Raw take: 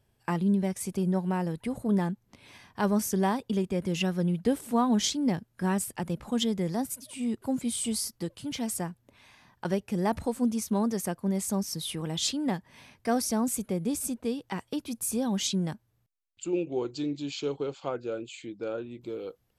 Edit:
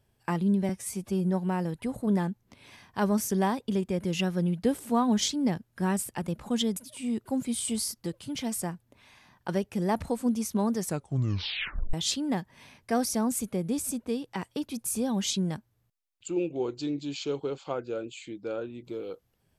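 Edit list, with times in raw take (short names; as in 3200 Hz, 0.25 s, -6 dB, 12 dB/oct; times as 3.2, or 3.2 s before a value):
0.69–1.06 stretch 1.5×
6.58–6.93 cut
10.96 tape stop 1.14 s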